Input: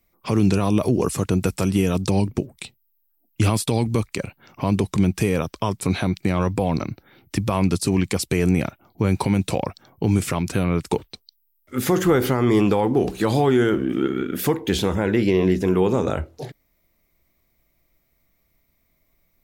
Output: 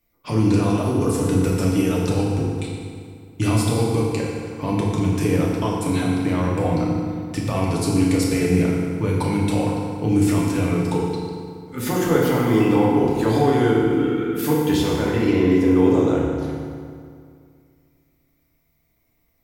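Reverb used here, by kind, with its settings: FDN reverb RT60 2.2 s, low-frequency decay 1.1×, high-frequency decay 0.7×, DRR -4.5 dB; trim -5.5 dB

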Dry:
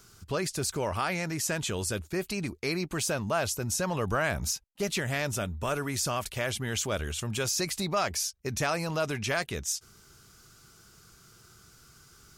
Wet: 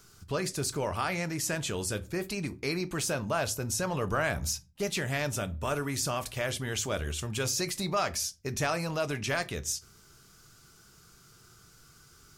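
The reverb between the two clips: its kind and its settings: simulated room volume 130 m³, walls furnished, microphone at 0.4 m; trim -1.5 dB

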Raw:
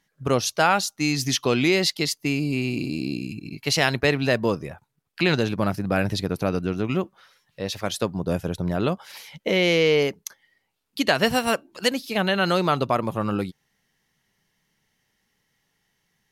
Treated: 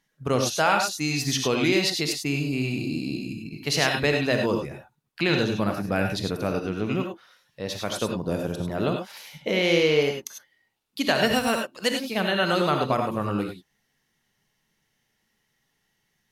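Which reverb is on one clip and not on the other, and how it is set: gated-style reverb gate 120 ms rising, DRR 3 dB; trim -3 dB

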